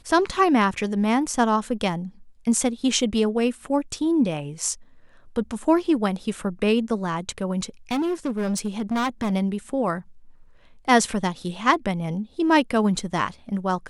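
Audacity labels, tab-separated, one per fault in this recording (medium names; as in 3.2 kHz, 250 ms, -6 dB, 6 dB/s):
7.910000	9.330000	clipped -21 dBFS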